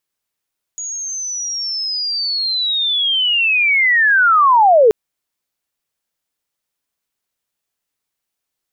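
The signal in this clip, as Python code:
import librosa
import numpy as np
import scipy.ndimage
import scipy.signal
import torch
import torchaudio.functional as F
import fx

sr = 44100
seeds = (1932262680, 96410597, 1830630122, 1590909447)

y = fx.chirp(sr, length_s=4.13, from_hz=6800.0, to_hz=410.0, law='linear', from_db=-23.0, to_db=-6.0)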